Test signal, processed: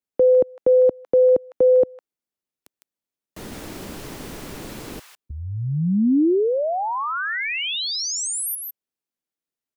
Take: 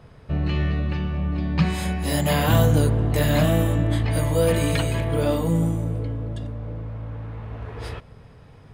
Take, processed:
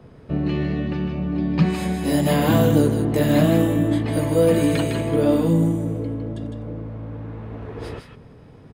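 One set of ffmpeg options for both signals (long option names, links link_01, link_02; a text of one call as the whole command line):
ffmpeg -i in.wav -filter_complex "[0:a]equalizer=frequency=290:width_type=o:width=2:gain=11,acrossover=split=110|960[link_01][link_02][link_03];[link_01]acompressor=threshold=-33dB:ratio=6[link_04];[link_03]aecho=1:1:156:0.562[link_05];[link_04][link_02][link_05]amix=inputs=3:normalize=0,volume=-3dB" out.wav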